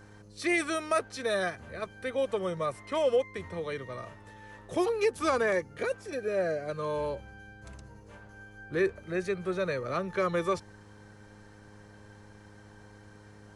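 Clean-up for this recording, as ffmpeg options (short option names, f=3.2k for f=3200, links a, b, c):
-af "bandreject=f=103.7:t=h:w=4,bandreject=f=207.4:t=h:w=4,bandreject=f=311.1:t=h:w=4,bandreject=f=414.8:t=h:w=4,bandreject=f=518.5:t=h:w=4"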